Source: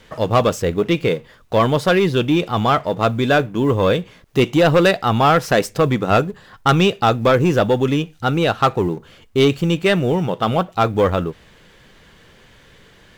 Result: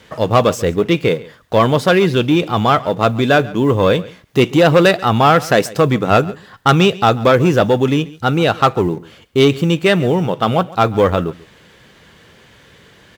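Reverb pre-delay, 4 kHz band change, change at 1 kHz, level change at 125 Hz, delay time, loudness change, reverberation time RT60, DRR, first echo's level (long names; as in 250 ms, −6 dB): no reverb audible, +3.0 dB, +3.0 dB, +2.5 dB, 138 ms, +3.0 dB, no reverb audible, no reverb audible, −20.5 dB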